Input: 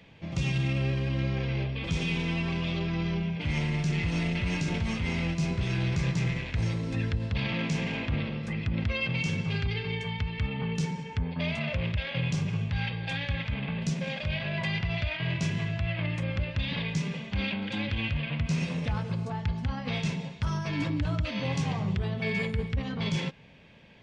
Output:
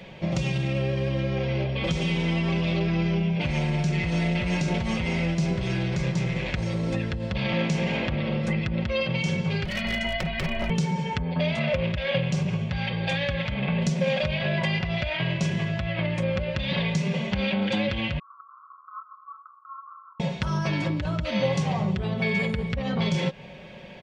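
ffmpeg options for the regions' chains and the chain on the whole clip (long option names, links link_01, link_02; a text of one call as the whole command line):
ffmpeg -i in.wav -filter_complex "[0:a]asettb=1/sr,asplit=3[link_01][link_02][link_03];[link_01]atrim=end=9.654[link_04];[link_02]atrim=start=9.65:end=10.7,asetpts=PTS-STARTPTS,afade=type=in:duration=0.004:curve=qsin,afade=type=out:start_time=1.046:duration=0.004:curve=qsin,aeval=exprs='0.0562*(abs(mod(val(0)/0.0562+3,4)-2)-1)':channel_layout=same,equalizer=frequency=90:width_type=o:width=1.7:gain=-11,afreqshift=-220[link_05];[link_03]atrim=start=10.696[link_06];[link_04][link_05]acrossfade=duration=0.004:curve1=hsin:curve2=qsin[link_07];[link_07][link_06]acrossfade=duration=0.004:curve1=qsin:curve2=hsin,asettb=1/sr,asplit=3[link_08][link_09][link_10];[link_08]atrim=end=18.194[link_11];[link_09]atrim=start=18.19:end=20.2,asetpts=PTS-STARTPTS,afade=type=in:duration=0.004:curve=qsin,afade=type=out:start_time=2.006:duration=0.004:curve=qsin,asuperpass=centerf=1200:order=12:qfactor=3.4,flanger=delay=5.2:depth=2.8:regen=-67:speed=1.5:shape=triangular[link_12];[link_10]atrim=start=20.196[link_13];[link_11][link_12]acrossfade=duration=0.004:curve1=hsin:curve2=qsin[link_14];[link_14][link_13]acrossfade=duration=0.004:curve1=qsin:curve2=hsin,acompressor=threshold=-33dB:ratio=6,equalizer=frequency=590:width=1.6:gain=7.5,aecho=1:1:5.4:0.47,volume=8.5dB" out.wav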